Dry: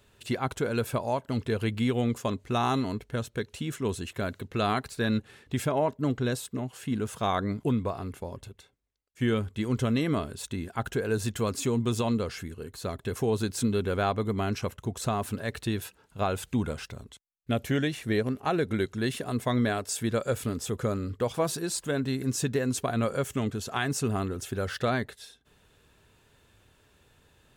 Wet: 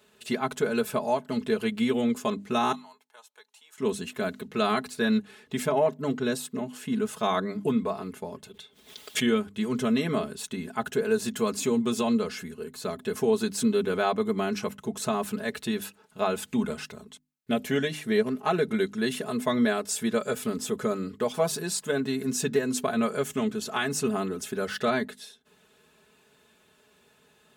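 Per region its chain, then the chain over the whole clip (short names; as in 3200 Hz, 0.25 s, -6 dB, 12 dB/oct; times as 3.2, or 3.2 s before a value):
2.72–3.78 ladder high-pass 820 Hz, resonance 70% + bell 1200 Hz -9 dB 2.6 oct
8.49–9.26 bell 3400 Hz +11.5 dB 0.5 oct + backwards sustainer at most 75 dB/s
whole clip: HPF 140 Hz 12 dB/oct; notches 50/100/150/200/250/300 Hz; comb 4.7 ms, depth 79%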